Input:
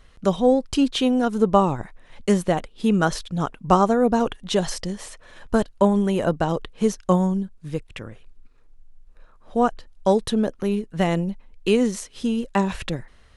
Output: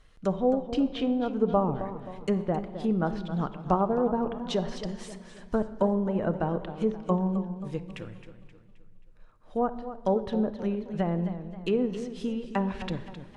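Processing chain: low-pass that closes with the level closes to 1.1 kHz, closed at -16 dBFS; simulated room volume 1500 m³, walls mixed, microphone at 0.48 m; modulated delay 265 ms, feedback 44%, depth 97 cents, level -12 dB; trim -7 dB

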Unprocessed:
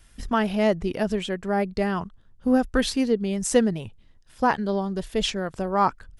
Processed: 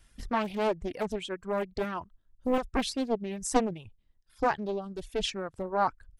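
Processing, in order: reverb removal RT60 1.7 s; 1.84–2.58 s: comb 3.1 ms, depth 36%; loudspeaker Doppler distortion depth 0.93 ms; trim -5.5 dB

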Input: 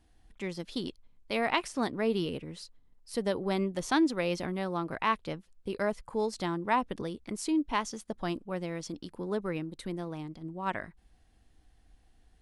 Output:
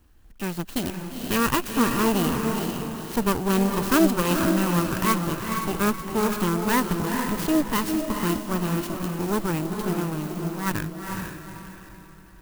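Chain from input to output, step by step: comb filter that takes the minimum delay 0.7 ms; echo that smears into a reverb 462 ms, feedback 40%, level -4 dB; sampling jitter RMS 0.054 ms; trim +8 dB

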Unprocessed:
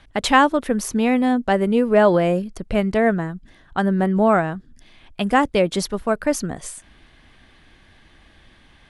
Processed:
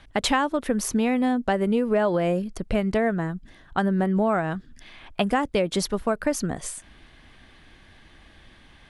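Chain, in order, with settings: 4.50–5.24 s: peaking EQ 3.8 kHz -> 780 Hz +7.5 dB 2.5 oct; compression 5:1, threshold -19 dBFS, peak gain reduction 10 dB

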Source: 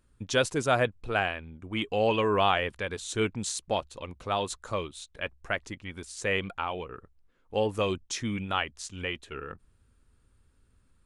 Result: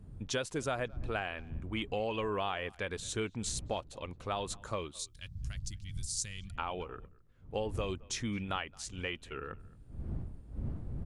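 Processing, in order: wind noise 98 Hz -40 dBFS; compression 6:1, threshold -28 dBFS, peak gain reduction 9 dB; 4.99–6.56 s: FFT filter 130 Hz 0 dB, 500 Hz -27 dB, 2.4 kHz -11 dB, 4.7 kHz +9 dB; speakerphone echo 220 ms, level -24 dB; trim -3 dB

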